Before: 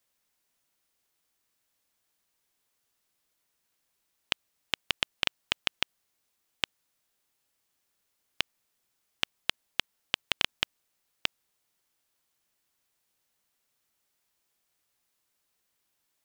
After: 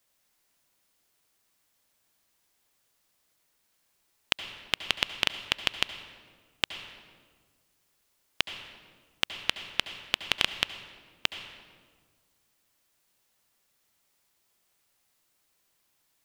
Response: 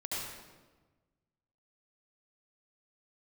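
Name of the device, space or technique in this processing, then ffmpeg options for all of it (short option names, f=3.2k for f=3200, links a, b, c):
ducked reverb: -filter_complex "[0:a]asplit=3[a][b][c];[1:a]atrim=start_sample=2205[d];[b][d]afir=irnorm=-1:irlink=0[e];[c]apad=whole_len=716575[f];[e][f]sidechaincompress=threshold=-29dB:ratio=4:attack=16:release=1240,volume=-3.5dB[g];[a][g]amix=inputs=2:normalize=0,volume=1dB"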